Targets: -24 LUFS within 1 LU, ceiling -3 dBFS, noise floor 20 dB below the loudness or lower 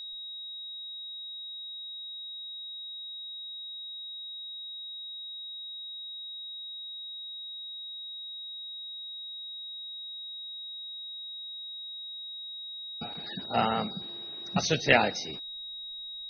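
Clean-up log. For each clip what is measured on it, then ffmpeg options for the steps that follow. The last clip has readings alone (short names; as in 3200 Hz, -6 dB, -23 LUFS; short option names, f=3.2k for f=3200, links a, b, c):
steady tone 3800 Hz; tone level -38 dBFS; loudness -34.5 LUFS; peak -5.0 dBFS; loudness target -24.0 LUFS
-> -af "bandreject=f=3.8k:w=30"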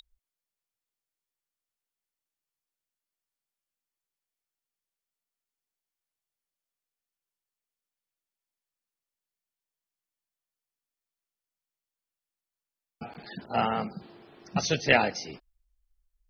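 steady tone none; loudness -27.5 LUFS; peak -5.5 dBFS; loudness target -24.0 LUFS
-> -af "volume=3.5dB,alimiter=limit=-3dB:level=0:latency=1"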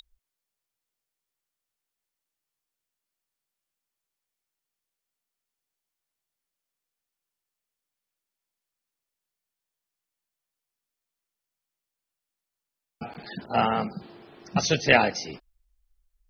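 loudness -24.0 LUFS; peak -3.0 dBFS; noise floor -87 dBFS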